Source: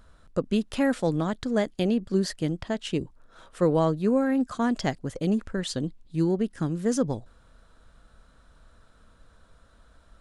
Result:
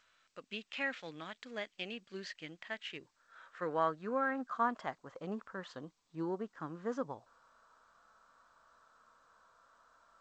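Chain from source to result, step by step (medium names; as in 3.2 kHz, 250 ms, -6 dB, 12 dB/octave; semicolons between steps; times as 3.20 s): band-pass sweep 2.5 kHz -> 1.1 kHz, 2.10–4.92 s; harmonic-percussive split percussive -7 dB; trim +4.5 dB; G.722 64 kbps 16 kHz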